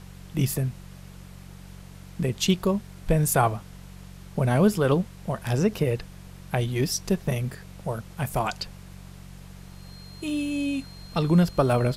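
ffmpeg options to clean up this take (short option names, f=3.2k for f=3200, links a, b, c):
-af "bandreject=f=46.4:t=h:w=4,bandreject=f=92.8:t=h:w=4,bandreject=f=139.2:t=h:w=4,bandreject=f=185.6:t=h:w=4,bandreject=f=4.2k:w=30,afftdn=nr=26:nf=-44"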